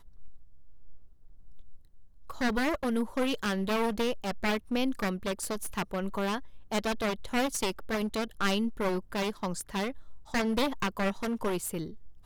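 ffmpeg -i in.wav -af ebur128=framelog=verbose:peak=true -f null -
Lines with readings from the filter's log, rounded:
Integrated loudness:
  I:         -31.5 LUFS
  Threshold: -42.4 LUFS
Loudness range:
  LRA:         2.2 LU
  Threshold: -51.9 LUFS
  LRA low:   -32.9 LUFS
  LRA high:  -30.7 LUFS
True peak:
  Peak:      -13.5 dBFS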